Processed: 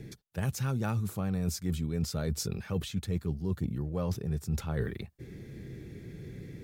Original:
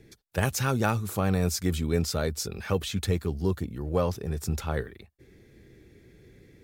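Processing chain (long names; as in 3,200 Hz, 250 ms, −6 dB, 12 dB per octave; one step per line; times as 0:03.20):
parametric band 150 Hz +10 dB 1.4 octaves
reversed playback
downward compressor 6 to 1, threshold −34 dBFS, peak gain reduction 18 dB
reversed playback
level +4.5 dB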